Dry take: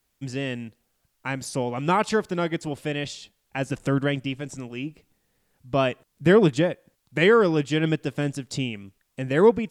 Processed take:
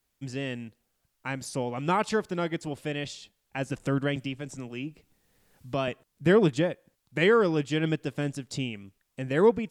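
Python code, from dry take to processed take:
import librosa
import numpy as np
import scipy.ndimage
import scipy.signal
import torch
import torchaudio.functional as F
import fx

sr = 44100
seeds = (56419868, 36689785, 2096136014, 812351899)

y = fx.band_squash(x, sr, depth_pct=40, at=(4.16, 5.88))
y = F.gain(torch.from_numpy(y), -4.0).numpy()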